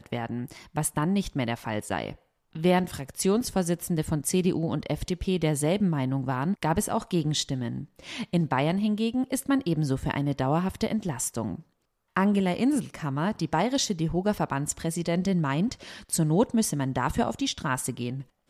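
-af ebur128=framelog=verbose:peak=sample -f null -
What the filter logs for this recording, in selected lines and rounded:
Integrated loudness:
  I:         -27.4 LUFS
  Threshold: -37.6 LUFS
Loudness range:
  LRA:         1.2 LU
  Threshold: -47.4 LUFS
  LRA low:   -28.1 LUFS
  LRA high:  -26.8 LUFS
Sample peak:
  Peak:       -9.2 dBFS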